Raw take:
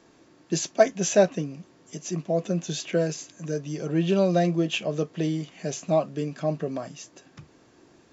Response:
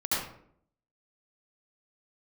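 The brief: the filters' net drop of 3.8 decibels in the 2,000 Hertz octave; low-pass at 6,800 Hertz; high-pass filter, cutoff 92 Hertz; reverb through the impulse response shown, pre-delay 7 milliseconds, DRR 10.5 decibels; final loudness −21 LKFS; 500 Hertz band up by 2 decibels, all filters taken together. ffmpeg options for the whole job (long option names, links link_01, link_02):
-filter_complex "[0:a]highpass=92,lowpass=6800,equalizer=frequency=500:width_type=o:gain=3,equalizer=frequency=2000:width_type=o:gain=-5.5,asplit=2[link_01][link_02];[1:a]atrim=start_sample=2205,adelay=7[link_03];[link_02][link_03]afir=irnorm=-1:irlink=0,volume=-20dB[link_04];[link_01][link_04]amix=inputs=2:normalize=0,volume=4dB"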